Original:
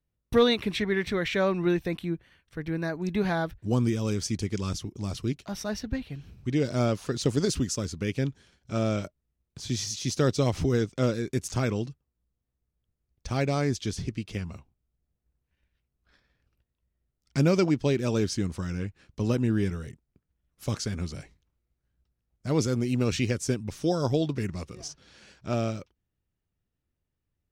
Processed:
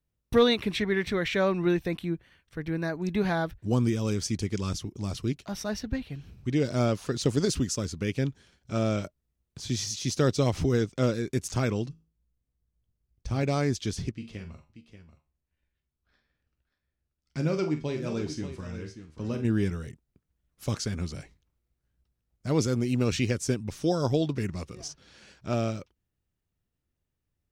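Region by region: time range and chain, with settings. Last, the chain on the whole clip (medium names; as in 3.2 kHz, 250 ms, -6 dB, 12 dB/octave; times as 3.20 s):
11.89–13.43 s: bass shelf 330 Hz +8.5 dB + feedback comb 54 Hz, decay 0.36 s, mix 70%
14.11–19.45 s: treble shelf 9.6 kHz -12 dB + feedback comb 77 Hz, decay 0.32 s, mix 70% + multi-tap echo 47/584 ms -10/-11 dB
whole clip: none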